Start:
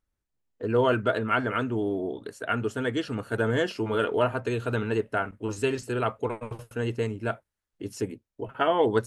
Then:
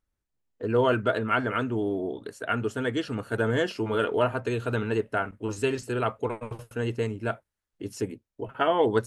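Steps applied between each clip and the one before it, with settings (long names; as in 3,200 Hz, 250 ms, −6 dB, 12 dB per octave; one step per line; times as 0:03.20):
no processing that can be heard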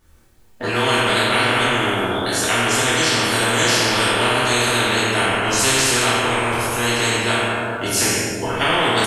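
double-tracking delay 25 ms −5 dB
dense smooth reverb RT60 1.3 s, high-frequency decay 0.8×, DRR −10 dB
every bin compressed towards the loudest bin 4 to 1
level −4.5 dB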